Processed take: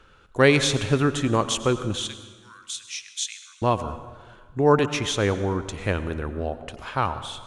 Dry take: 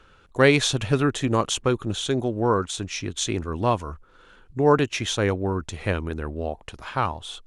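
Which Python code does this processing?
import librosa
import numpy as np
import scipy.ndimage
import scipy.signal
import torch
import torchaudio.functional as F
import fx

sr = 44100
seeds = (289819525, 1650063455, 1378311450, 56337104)

y = fx.bessel_highpass(x, sr, hz=2800.0, order=6, at=(2.07, 3.62))
y = fx.rev_plate(y, sr, seeds[0], rt60_s=1.5, hf_ratio=0.7, predelay_ms=80, drr_db=11.5)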